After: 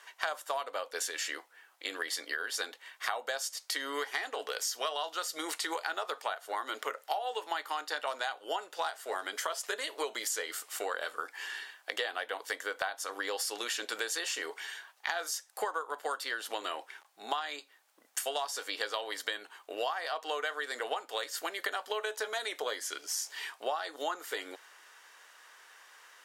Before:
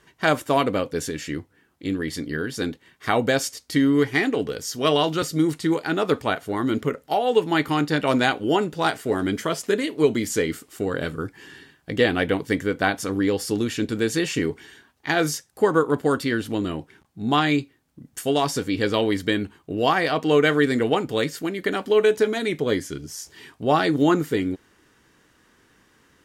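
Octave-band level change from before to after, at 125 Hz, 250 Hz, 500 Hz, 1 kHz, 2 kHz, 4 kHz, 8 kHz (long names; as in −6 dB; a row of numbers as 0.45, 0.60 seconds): below −40 dB, −29.0 dB, −16.5 dB, −9.5 dB, −8.5 dB, −6.5 dB, −3.0 dB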